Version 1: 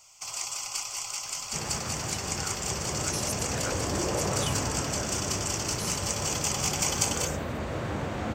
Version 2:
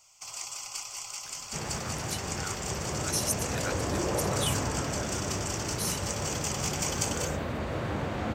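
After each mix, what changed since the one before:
speech: add tilt EQ +2 dB/octave; first sound -4.5 dB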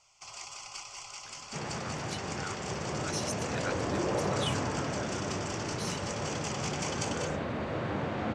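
second sound: add high-pass 110 Hz 12 dB/octave; master: add distance through air 99 m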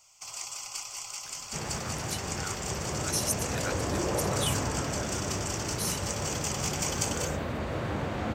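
second sound: remove high-pass 110 Hz 12 dB/octave; master: remove distance through air 99 m

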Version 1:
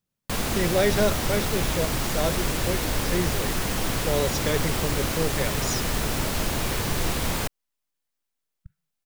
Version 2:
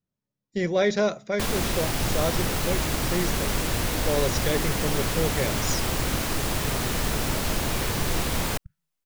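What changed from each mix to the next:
first sound: entry +1.10 s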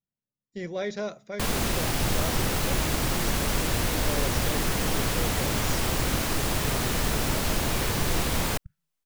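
speech -9.0 dB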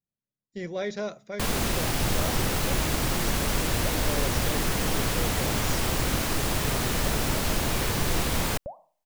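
second sound: remove brick-wall FIR band-stop 180–1300 Hz

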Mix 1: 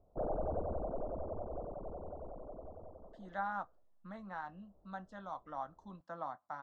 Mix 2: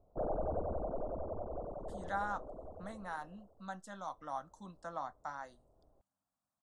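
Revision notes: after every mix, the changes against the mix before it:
speech: entry -1.25 s; master: remove distance through air 230 m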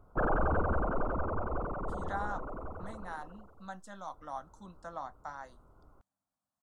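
background: remove four-pole ladder low-pass 750 Hz, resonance 55%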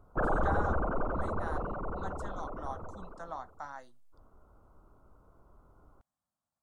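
speech: entry -1.65 s

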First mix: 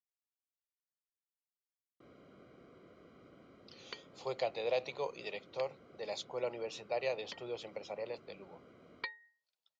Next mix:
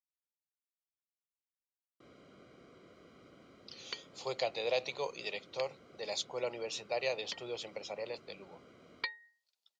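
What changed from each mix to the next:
master: add treble shelf 3.2 kHz +11 dB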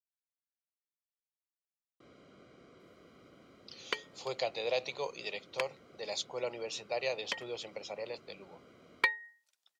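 second sound: remove four-pole ladder low-pass 4.8 kHz, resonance 75%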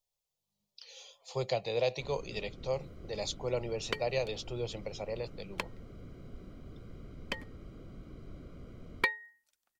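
speech: entry -2.90 s; master: remove frequency weighting A

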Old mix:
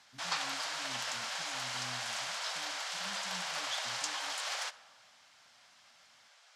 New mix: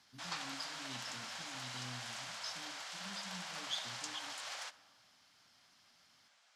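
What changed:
speech: send +10.0 dB; background -7.5 dB

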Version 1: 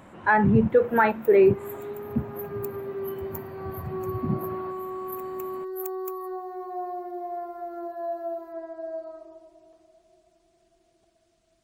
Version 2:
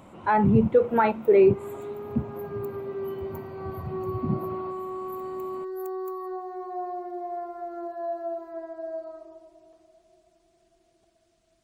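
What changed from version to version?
speech: add peaking EQ 1.7 kHz -12 dB 0.33 oct; first sound -11.5 dB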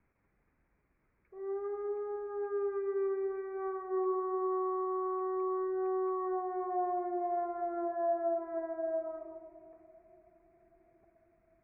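speech: muted; master: add steep low-pass 2.4 kHz 96 dB/octave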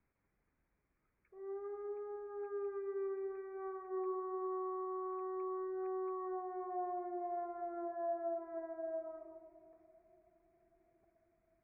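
second sound -7.0 dB

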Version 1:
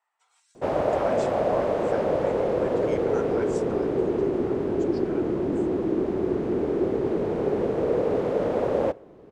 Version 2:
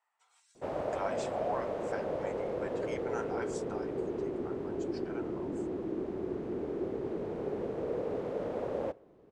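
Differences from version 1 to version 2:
speech: send off; background -11.0 dB

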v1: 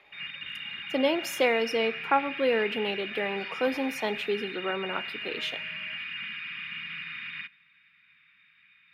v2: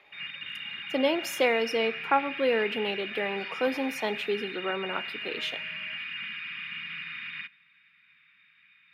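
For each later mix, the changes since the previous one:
master: add bass shelf 72 Hz -8 dB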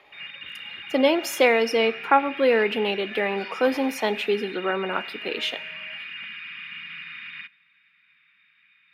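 speech +6.0 dB; background: add bass shelf 110 Hz -8.5 dB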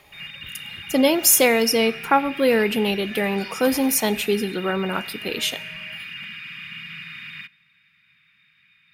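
master: remove three-band isolator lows -18 dB, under 260 Hz, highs -22 dB, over 3.9 kHz

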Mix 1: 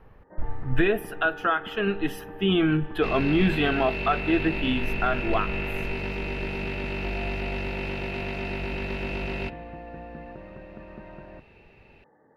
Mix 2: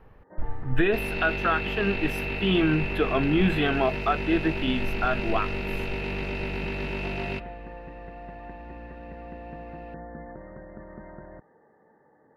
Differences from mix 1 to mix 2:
speech: send -10.0 dB; second sound: entry -2.10 s

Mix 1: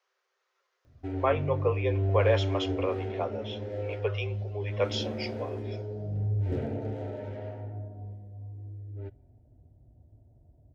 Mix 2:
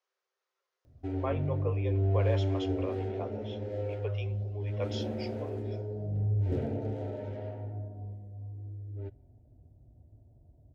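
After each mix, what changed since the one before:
speech -7.0 dB; master: add peaking EQ 1.7 kHz -4 dB 1.8 oct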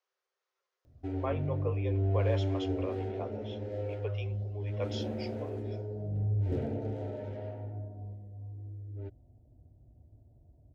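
reverb: off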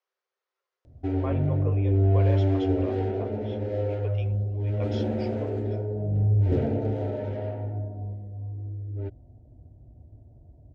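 background +8.5 dB; master: add distance through air 65 m

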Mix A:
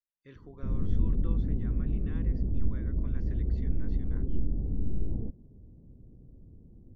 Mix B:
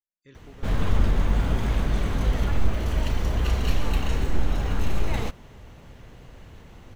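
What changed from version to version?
background: remove four-pole ladder low-pass 390 Hz, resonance 25%; master: remove Gaussian low-pass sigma 2 samples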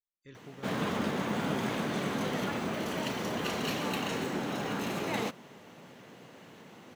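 background: add high-pass 170 Hz 24 dB/octave

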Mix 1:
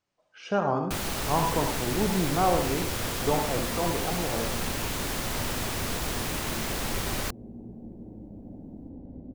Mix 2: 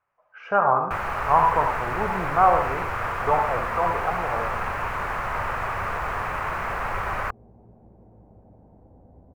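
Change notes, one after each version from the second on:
second sound: send off; master: add FFT filter 100 Hz 0 dB, 290 Hz -10 dB, 430 Hz 0 dB, 1.2 kHz +13 dB, 2.5 kHz +1 dB, 3.5 kHz -15 dB, 11 kHz -19 dB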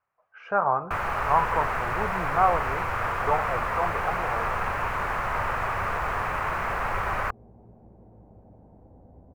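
reverb: off

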